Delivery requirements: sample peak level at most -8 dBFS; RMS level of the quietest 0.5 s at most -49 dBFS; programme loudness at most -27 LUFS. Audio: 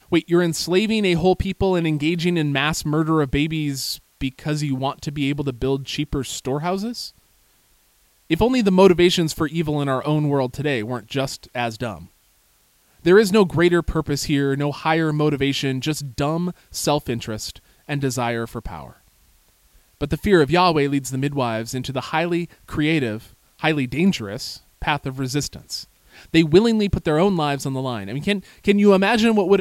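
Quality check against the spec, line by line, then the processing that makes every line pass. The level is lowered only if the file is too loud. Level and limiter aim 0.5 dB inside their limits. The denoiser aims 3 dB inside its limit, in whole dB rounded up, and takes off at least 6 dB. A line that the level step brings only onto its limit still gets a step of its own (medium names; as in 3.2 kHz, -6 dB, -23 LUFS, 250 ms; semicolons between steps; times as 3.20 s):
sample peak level -2.0 dBFS: fail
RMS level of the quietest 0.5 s -60 dBFS: pass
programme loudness -20.5 LUFS: fail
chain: trim -7 dB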